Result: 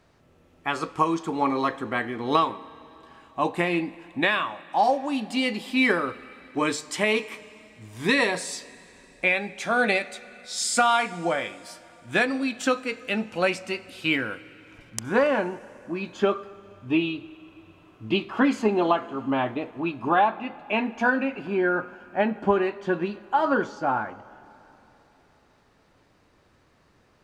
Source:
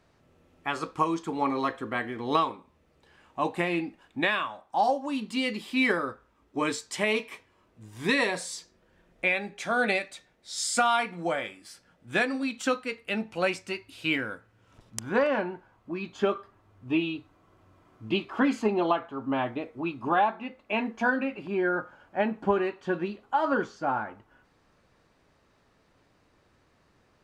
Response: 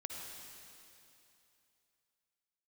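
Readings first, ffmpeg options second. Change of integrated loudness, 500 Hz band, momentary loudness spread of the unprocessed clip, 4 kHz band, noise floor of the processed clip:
+3.5 dB, +3.5 dB, 12 LU, +3.5 dB, -61 dBFS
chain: -filter_complex "[0:a]asplit=2[s0][s1];[1:a]atrim=start_sample=2205,asetrate=36162,aresample=44100[s2];[s1][s2]afir=irnorm=-1:irlink=0,volume=0.168[s3];[s0][s3]amix=inputs=2:normalize=0,volume=1.33"

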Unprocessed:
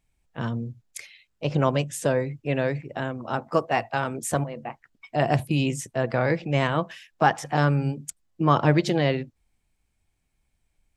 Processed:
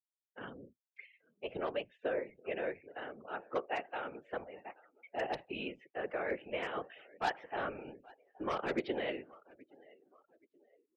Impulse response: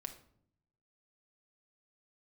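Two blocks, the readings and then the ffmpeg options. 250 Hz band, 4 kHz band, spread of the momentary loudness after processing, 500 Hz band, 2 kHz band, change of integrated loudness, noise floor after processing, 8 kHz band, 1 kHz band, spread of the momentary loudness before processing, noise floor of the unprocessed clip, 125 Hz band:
-18.0 dB, -12.5 dB, 19 LU, -12.0 dB, -11.5 dB, -14.5 dB, under -85 dBFS, under -25 dB, -14.0 dB, 15 LU, -74 dBFS, -31.5 dB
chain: -filter_complex "[0:a]highpass=f=280:w=0.5412,highpass=f=280:w=1.3066,equalizer=f=280:t=q:w=4:g=-9,equalizer=f=650:t=q:w=4:g=-5,equalizer=f=1000:t=q:w=4:g=-10,lowpass=f=3100:w=0.5412,lowpass=f=3100:w=1.3066,aeval=exprs='0.158*(abs(mod(val(0)/0.158+3,4)-2)-1)':c=same,adynamicequalizer=threshold=0.00447:dfrequency=1700:dqfactor=3:tfrequency=1700:tqfactor=3:attack=5:release=100:ratio=0.375:range=2:mode=cutabove:tftype=bell,agate=range=0.0224:threshold=0.00398:ratio=3:detection=peak,asplit=2[s0][s1];[s1]aecho=0:1:825|1650|2475:0.075|0.0345|0.0159[s2];[s0][s2]amix=inputs=2:normalize=0,afftfilt=real='hypot(re,im)*cos(2*PI*random(0))':imag='hypot(re,im)*sin(2*PI*random(1))':win_size=512:overlap=0.75,afftdn=nr=20:nf=-57,volume=0.708"

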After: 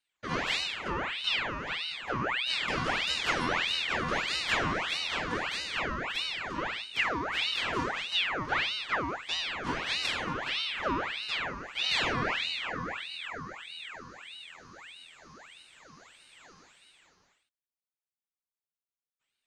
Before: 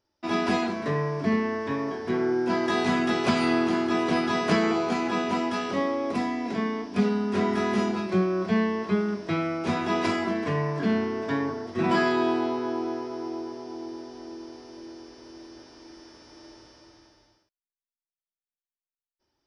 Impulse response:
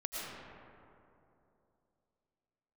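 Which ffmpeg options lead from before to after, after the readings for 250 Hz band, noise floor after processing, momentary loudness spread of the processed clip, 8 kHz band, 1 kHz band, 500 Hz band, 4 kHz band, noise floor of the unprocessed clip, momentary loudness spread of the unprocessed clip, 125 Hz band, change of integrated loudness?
-16.0 dB, under -85 dBFS, 13 LU, +0.5 dB, -4.5 dB, -12.5 dB, +7.5 dB, under -85 dBFS, 15 LU, -9.5 dB, -4.5 dB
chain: -af "afreqshift=120,aeval=exprs='val(0)*sin(2*PI*2000*n/s+2000*0.7/1.6*sin(2*PI*1.6*n/s))':c=same,volume=0.668"

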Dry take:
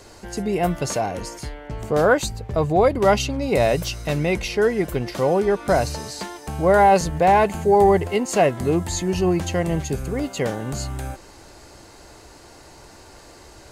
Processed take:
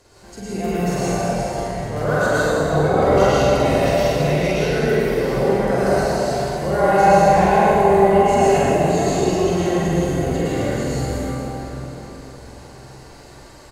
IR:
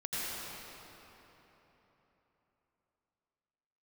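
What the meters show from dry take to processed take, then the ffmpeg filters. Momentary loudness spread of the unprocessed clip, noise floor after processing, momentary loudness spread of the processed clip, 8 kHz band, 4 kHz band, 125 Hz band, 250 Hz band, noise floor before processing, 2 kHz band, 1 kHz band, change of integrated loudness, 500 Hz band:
15 LU, -42 dBFS, 12 LU, 0.0 dB, +1.5 dB, +4.0 dB, +3.5 dB, -46 dBFS, +3.0 dB, +3.0 dB, +2.5 dB, +3.0 dB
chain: -filter_complex "[0:a]asplit=2[s0][s1];[s1]adelay=46,volume=0.794[s2];[s0][s2]amix=inputs=2:normalize=0[s3];[1:a]atrim=start_sample=2205,asetrate=35721,aresample=44100[s4];[s3][s4]afir=irnorm=-1:irlink=0,volume=0.473"

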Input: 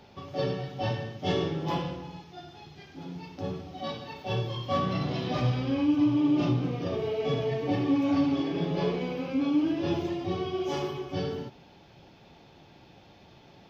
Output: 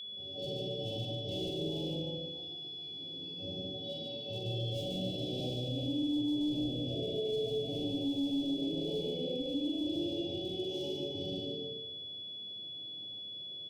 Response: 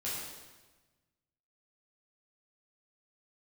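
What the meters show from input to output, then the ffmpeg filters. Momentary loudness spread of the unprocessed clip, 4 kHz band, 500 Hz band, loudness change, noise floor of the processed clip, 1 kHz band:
16 LU, +5.0 dB, -6.0 dB, -7.0 dB, -44 dBFS, -19.5 dB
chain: -filter_complex "[0:a]bass=f=250:g=-6,treble=f=4000:g=-14[s0];[1:a]atrim=start_sample=2205[s1];[s0][s1]afir=irnorm=-1:irlink=0,volume=15.8,asoftclip=hard,volume=0.0631,asuperstop=centerf=1400:order=8:qfactor=0.58,aemphasis=mode=production:type=cd,aecho=1:1:43.73|145.8:0.562|0.631,alimiter=limit=0.112:level=0:latency=1:release=171,aeval=exprs='val(0)+0.0224*sin(2*PI*3400*n/s)':c=same,volume=0.376"

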